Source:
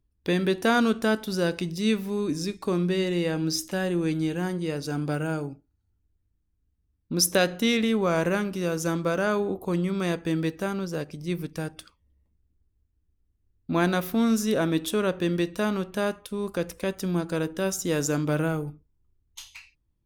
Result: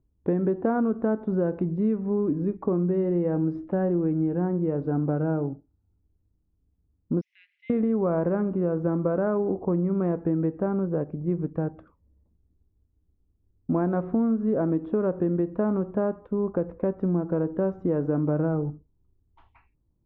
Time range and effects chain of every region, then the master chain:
7.21–7.7 switching spikes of -25 dBFS + rippled Chebyshev high-pass 2000 Hz, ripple 3 dB + air absorption 110 m
whole clip: Bessel low-pass 750 Hz, order 4; low shelf 76 Hz -7 dB; compressor, threshold -28 dBFS; gain +7 dB

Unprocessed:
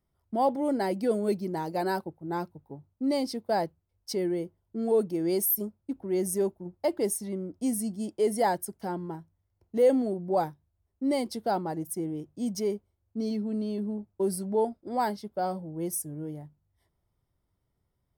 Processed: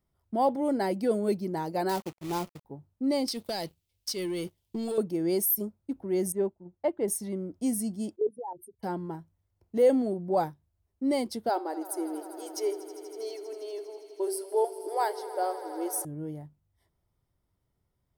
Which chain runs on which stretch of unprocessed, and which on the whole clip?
1.89–2.65 companded quantiser 4-bit + expander -52 dBFS + bell 1600 Hz -9.5 dB 0.22 oct
3.28–4.98 resonant high shelf 2000 Hz +13.5 dB, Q 1.5 + compressor 12:1, threshold -35 dBFS + sample leveller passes 2
6.32–7.08 running mean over 8 samples + upward expander, over -41 dBFS
8.16–8.83 spectral contrast raised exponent 3 + fixed phaser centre 1000 Hz, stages 8 + level quantiser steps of 12 dB
11.49–16.05 brick-wall FIR high-pass 290 Hz + de-hum 384.3 Hz, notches 32 + swelling echo 80 ms, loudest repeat 5, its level -18 dB
whole clip: dry

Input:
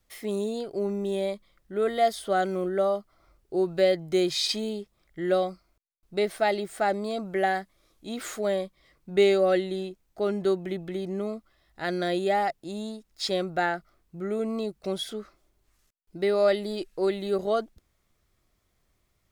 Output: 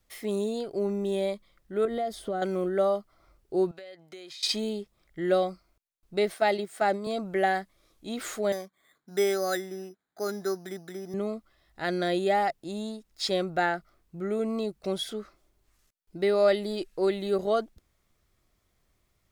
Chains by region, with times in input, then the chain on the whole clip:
1.85–2.42 tilt shelf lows +6 dB, about 780 Hz + compressor, threshold -27 dBFS
3.71–4.43 HPF 1500 Hz 6 dB/oct + high shelf 4500 Hz -10 dB + compressor 20:1, threshold -40 dBFS
6.34–7.07 HPF 140 Hz 24 dB/oct + gate -32 dBFS, range -7 dB + mismatched tape noise reduction encoder only
8.52–11.14 speaker cabinet 280–2100 Hz, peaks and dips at 340 Hz -7 dB, 540 Hz -9 dB, 960 Hz -4 dB, 1600 Hz +6 dB + careless resampling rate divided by 8×, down filtered, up hold
whole clip: dry

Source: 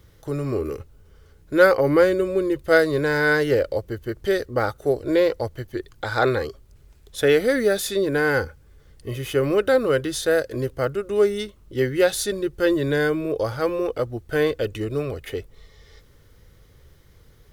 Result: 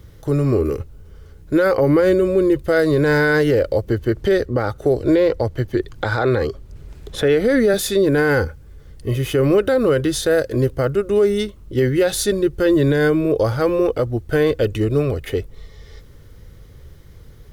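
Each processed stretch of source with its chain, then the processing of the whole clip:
3.87–7.74 high shelf 7100 Hz -8 dB + three-band squash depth 40%
whole clip: low shelf 420 Hz +6.5 dB; limiter -12 dBFS; gain +4 dB

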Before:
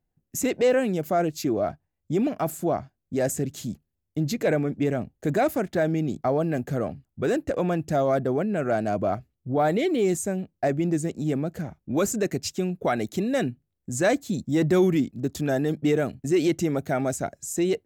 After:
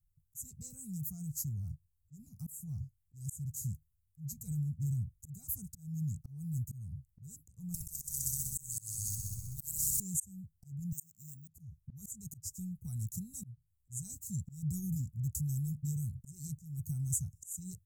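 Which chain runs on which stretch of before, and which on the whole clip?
7.74–10 multi-head echo 64 ms, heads all three, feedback 54%, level -8 dB + spectral compressor 10:1
10.92–11.48 HPF 1100 Hz 6 dB/oct + careless resampling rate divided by 2×, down filtered, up hold
whole clip: inverse Chebyshev band-stop 300–3400 Hz, stop band 50 dB; auto swell 0.273 s; gain +4 dB

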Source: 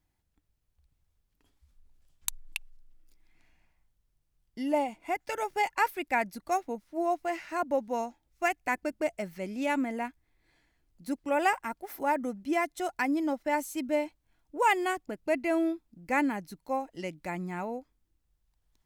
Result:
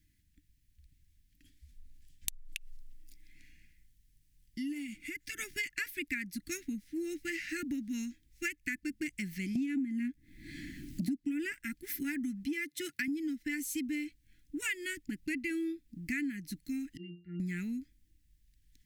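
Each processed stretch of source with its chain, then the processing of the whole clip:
2.42–5.39 bell 13000 Hz +3 dB 2.2 oct + compressor 2:1, threshold -46 dBFS
9.55–11.52 bell 240 Hz +12.5 dB 2.1 oct + three-band squash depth 70%
12.46–13.08 HPF 110 Hz 24 dB/oct + bell 7100 Hz -4.5 dB 0.71 oct
16.97–17.4 steep low-pass 4900 Hz + low shelf 200 Hz -6.5 dB + octave resonator F, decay 0.35 s
whole clip: elliptic band-stop 300–1800 Hz, stop band 40 dB; compressor 6:1, threshold -41 dBFS; gain +7.5 dB

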